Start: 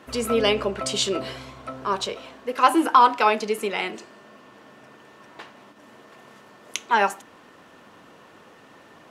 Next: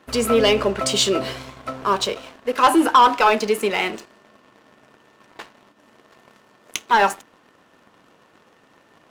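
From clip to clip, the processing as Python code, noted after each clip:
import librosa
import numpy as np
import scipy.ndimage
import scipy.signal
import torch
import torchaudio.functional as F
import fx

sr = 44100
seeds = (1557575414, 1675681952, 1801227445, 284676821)

y = fx.leveller(x, sr, passes=2)
y = y * librosa.db_to_amplitude(-2.0)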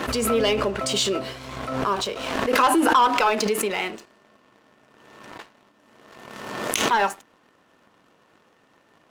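y = fx.pre_swell(x, sr, db_per_s=37.0)
y = y * librosa.db_to_amplitude(-5.0)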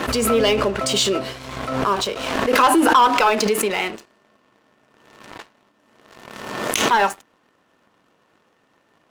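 y = fx.leveller(x, sr, passes=1)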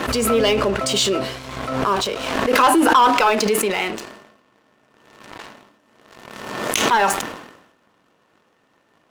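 y = fx.sustainer(x, sr, db_per_s=64.0)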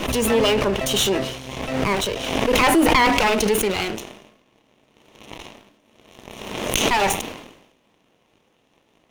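y = fx.lower_of_two(x, sr, delay_ms=0.32)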